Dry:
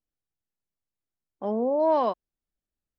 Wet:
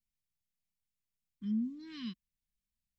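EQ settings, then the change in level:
elliptic band-stop filter 220–2,000 Hz, stop band 60 dB
notch filter 850 Hz, Q 12
0.0 dB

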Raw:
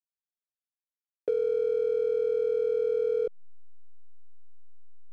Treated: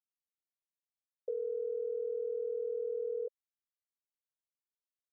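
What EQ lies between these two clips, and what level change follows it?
four-pole ladder high-pass 460 Hz, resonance 55%
Butterworth low-pass 1,000 Hz 36 dB per octave
phaser with its sweep stopped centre 790 Hz, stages 6
−4.5 dB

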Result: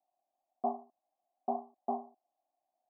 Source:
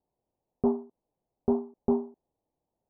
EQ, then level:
formant filter a
high-pass filter 180 Hz
phaser with its sweep stopped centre 450 Hz, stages 6
+10.0 dB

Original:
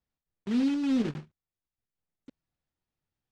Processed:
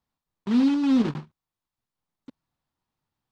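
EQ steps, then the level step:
graphic EQ with 10 bands 125 Hz +4 dB, 250 Hz +5 dB, 1,000 Hz +11 dB, 4,000 Hz +5 dB
0.0 dB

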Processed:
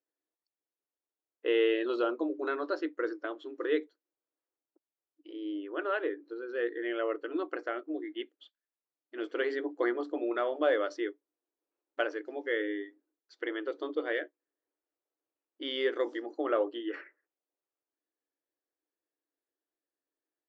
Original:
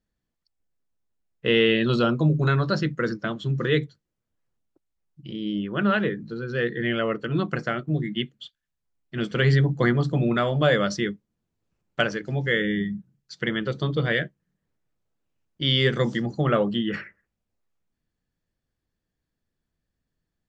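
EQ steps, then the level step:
linear-phase brick-wall high-pass 270 Hz
low-pass filter 1,100 Hz 6 dB per octave
−4.5 dB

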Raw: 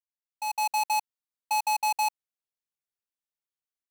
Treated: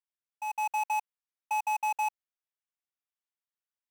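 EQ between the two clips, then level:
high-pass filter 810 Hz 12 dB per octave
Butterworth band-reject 4,200 Hz, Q 6.5
high-shelf EQ 4,200 Hz −11.5 dB
0.0 dB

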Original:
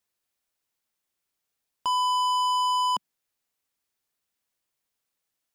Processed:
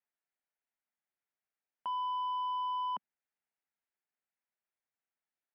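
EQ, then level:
loudspeaker in its box 240–2,200 Hz, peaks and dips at 320 Hz −9 dB, 500 Hz −8 dB, 1,100 Hz −7 dB
−5.5 dB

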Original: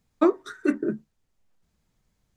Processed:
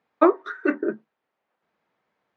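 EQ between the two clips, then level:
band-pass filter 490–2,100 Hz
high-frequency loss of the air 56 metres
+8.5 dB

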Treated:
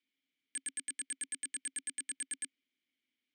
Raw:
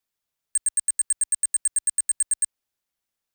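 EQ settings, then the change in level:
formant filter i
low-shelf EQ 180 Hz −6 dB
high-shelf EQ 8,700 Hz −7 dB
+15.5 dB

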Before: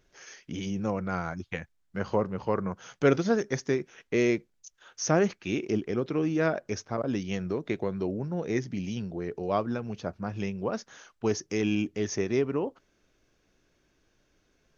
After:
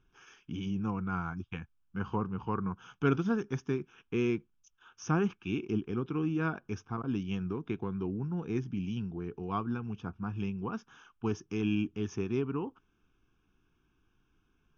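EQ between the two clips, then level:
high-frequency loss of the air 220 metres
phaser with its sweep stopped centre 2,900 Hz, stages 8
0.0 dB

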